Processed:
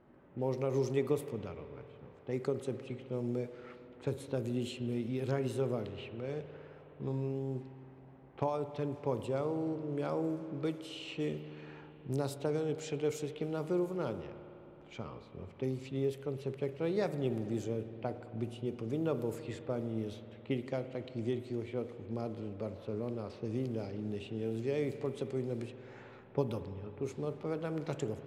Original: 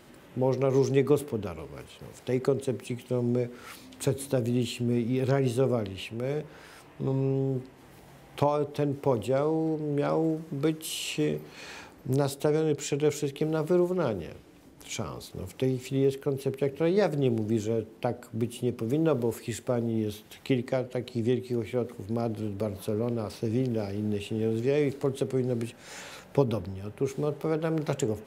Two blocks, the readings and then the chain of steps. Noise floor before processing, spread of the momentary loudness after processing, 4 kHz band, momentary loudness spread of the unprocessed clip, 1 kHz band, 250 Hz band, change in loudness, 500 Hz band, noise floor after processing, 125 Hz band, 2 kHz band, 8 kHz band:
-52 dBFS, 14 LU, -10.0 dB, 12 LU, -8.0 dB, -8.0 dB, -8.0 dB, -8.0 dB, -55 dBFS, -8.0 dB, -8.5 dB, -13.5 dB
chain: low-pass opened by the level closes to 1200 Hz, open at -22.5 dBFS; spring tank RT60 3.5 s, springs 53 ms, chirp 65 ms, DRR 10.5 dB; gain -8.5 dB

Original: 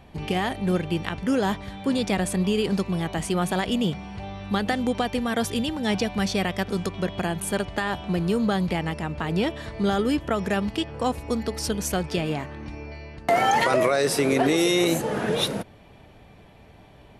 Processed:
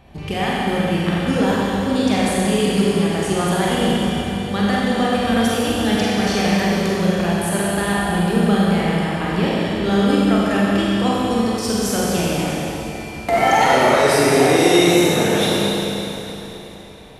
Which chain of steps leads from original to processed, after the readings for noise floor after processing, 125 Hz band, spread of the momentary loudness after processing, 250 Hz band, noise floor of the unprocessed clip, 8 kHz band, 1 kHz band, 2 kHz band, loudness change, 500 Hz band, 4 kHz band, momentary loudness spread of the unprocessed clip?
-33 dBFS, +7.5 dB, 9 LU, +8.0 dB, -50 dBFS, +7.5 dB, +7.5 dB, +7.5 dB, +7.0 dB, +7.5 dB, +7.5 dB, 9 LU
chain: Schroeder reverb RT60 3.4 s, combs from 31 ms, DRR -6.5 dB

